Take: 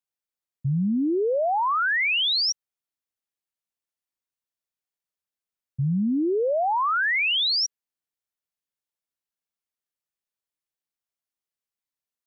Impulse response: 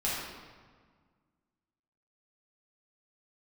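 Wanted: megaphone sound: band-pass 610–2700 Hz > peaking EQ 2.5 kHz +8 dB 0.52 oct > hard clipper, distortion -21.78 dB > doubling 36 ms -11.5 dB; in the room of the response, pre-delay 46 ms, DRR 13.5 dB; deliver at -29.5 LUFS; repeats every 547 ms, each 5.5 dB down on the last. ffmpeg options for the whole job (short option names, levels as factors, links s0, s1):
-filter_complex "[0:a]aecho=1:1:547|1094|1641|2188|2735|3282|3829:0.531|0.281|0.149|0.079|0.0419|0.0222|0.0118,asplit=2[s0][s1];[1:a]atrim=start_sample=2205,adelay=46[s2];[s1][s2]afir=irnorm=-1:irlink=0,volume=0.0841[s3];[s0][s3]amix=inputs=2:normalize=0,highpass=610,lowpass=2700,equalizer=f=2500:t=o:w=0.52:g=8,asoftclip=type=hard:threshold=0.158,asplit=2[s4][s5];[s5]adelay=36,volume=0.266[s6];[s4][s6]amix=inputs=2:normalize=0,volume=0.473"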